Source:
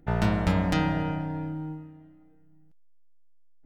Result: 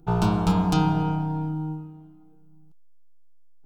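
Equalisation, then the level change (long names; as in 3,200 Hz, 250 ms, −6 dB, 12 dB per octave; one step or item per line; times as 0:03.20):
phaser with its sweep stopped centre 380 Hz, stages 8
+6.0 dB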